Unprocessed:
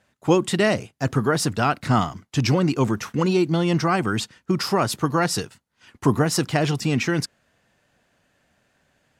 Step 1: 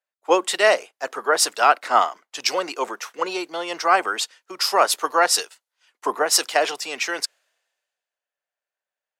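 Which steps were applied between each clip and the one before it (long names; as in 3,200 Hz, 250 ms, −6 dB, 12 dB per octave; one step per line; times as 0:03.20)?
high-pass filter 490 Hz 24 dB per octave
multiband upward and downward expander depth 70%
level +4 dB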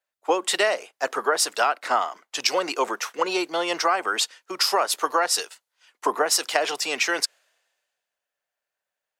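downward compressor 12 to 1, threshold −21 dBFS, peak gain reduction 12.5 dB
level +3.5 dB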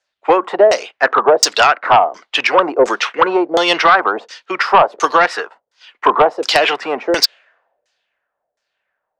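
auto-filter low-pass saw down 1.4 Hz 460–6,400 Hz
sine wavefolder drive 9 dB, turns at 0 dBFS
level −2.5 dB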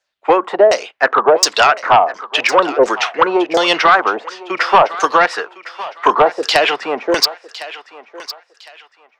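feedback echo with a high-pass in the loop 1,058 ms, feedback 32%, high-pass 670 Hz, level −14.5 dB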